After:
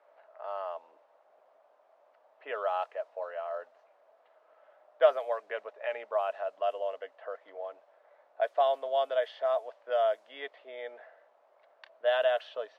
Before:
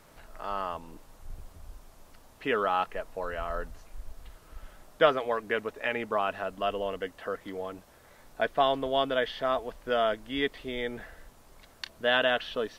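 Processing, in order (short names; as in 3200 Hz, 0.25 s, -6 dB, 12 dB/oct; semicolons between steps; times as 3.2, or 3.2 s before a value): ladder high-pass 550 Hz, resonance 65%; low-pass opened by the level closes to 2000 Hz, open at -25 dBFS; gain +1.5 dB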